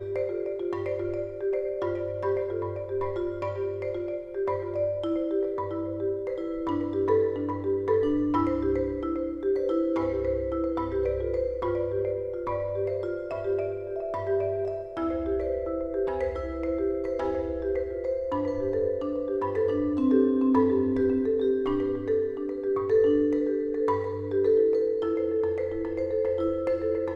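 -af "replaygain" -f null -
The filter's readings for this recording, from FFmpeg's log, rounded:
track_gain = +8.3 dB
track_peak = 0.192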